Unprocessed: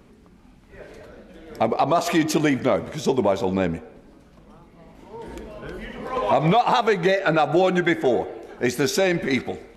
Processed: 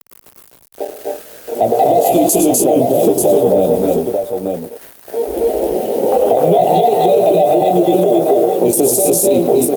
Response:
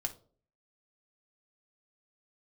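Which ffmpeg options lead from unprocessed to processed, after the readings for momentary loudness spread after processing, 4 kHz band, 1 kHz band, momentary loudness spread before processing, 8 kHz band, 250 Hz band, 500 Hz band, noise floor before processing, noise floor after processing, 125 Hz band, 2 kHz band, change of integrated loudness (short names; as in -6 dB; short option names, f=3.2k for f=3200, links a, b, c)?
14 LU, +0.5 dB, +7.5 dB, 17 LU, +17.0 dB, +7.5 dB, +11.5 dB, -51 dBFS, -45 dBFS, +3.5 dB, under -10 dB, +8.5 dB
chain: -filter_complex "[0:a]asuperstop=centerf=1400:order=12:qfactor=0.77,acrossover=split=350 2700:gain=0.126 1 0.0794[a][b][c];[a][b][c]amix=inputs=3:normalize=0,asplit=2[d][e];[e]adelay=17,volume=-5.5dB[f];[d][f]amix=inputs=2:normalize=0,areverse,acompressor=mode=upward:threshold=-41dB:ratio=2.5,areverse,aexciter=amount=3.5:drive=9.6:freq=7.7k,aeval=exprs='val(0)*gte(abs(val(0)),0.00668)':c=same,aemphasis=mode=production:type=75fm,afwtdn=0.02,acrossover=split=140|3000[g][h][i];[h]acompressor=threshold=-32dB:ratio=6[j];[g][j][i]amix=inputs=3:normalize=0,aecho=1:1:99|115|249|264|288|887:0.15|0.282|0.562|0.668|0.447|0.473,alimiter=level_in=24.5dB:limit=-1dB:release=50:level=0:latency=1,volume=-2dB" -ar 48000 -c:a libopus -b:a 48k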